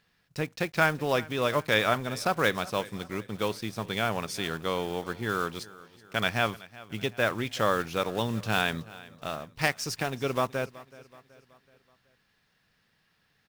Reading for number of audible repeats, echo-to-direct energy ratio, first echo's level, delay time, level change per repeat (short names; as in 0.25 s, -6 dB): 3, -19.0 dB, -20.0 dB, 0.376 s, -6.5 dB